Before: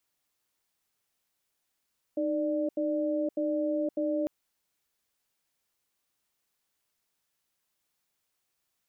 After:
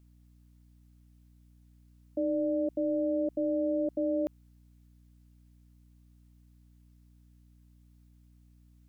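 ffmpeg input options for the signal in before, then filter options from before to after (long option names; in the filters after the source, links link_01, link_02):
-f lavfi -i "aevalsrc='0.0355*(sin(2*PI*308*t)+sin(2*PI*590*t))*clip(min(mod(t,0.6),0.52-mod(t,0.6))/0.005,0,1)':duration=2.1:sample_rate=44100"
-af "aeval=exprs='val(0)+0.00126*(sin(2*PI*60*n/s)+sin(2*PI*2*60*n/s)/2+sin(2*PI*3*60*n/s)/3+sin(2*PI*4*60*n/s)/4+sin(2*PI*5*60*n/s)/5)':channel_layout=same"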